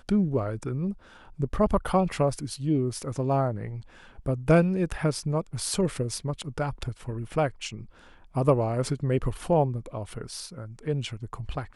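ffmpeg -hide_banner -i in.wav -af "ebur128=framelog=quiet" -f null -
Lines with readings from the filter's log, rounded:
Integrated loudness:
  I:         -28.0 LUFS
  Threshold: -38.4 LUFS
Loudness range:
  LRA:         3.0 LU
  Threshold: -48.1 LUFS
  LRA low:   -29.8 LUFS
  LRA high:  -26.8 LUFS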